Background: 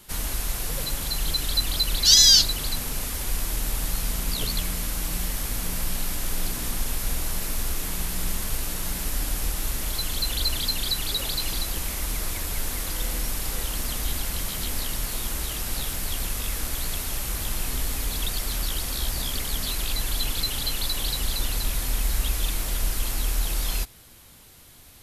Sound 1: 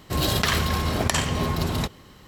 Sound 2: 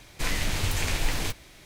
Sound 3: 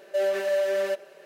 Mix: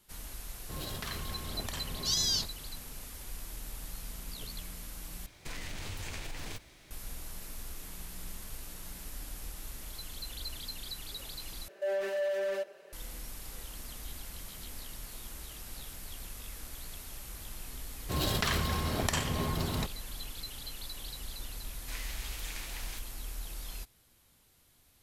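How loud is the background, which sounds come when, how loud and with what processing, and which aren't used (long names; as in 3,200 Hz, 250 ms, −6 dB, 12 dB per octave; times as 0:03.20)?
background −15.5 dB
0:00.59: mix in 1 −18 dB
0:05.26: overwrite with 2 −6.5 dB + downward compressor, threshold −29 dBFS
0:11.68: overwrite with 3 −5 dB + soft clipping −22 dBFS
0:17.99: mix in 1 −8 dB
0:21.68: mix in 2 −12 dB + high-pass filter 1,200 Hz 6 dB per octave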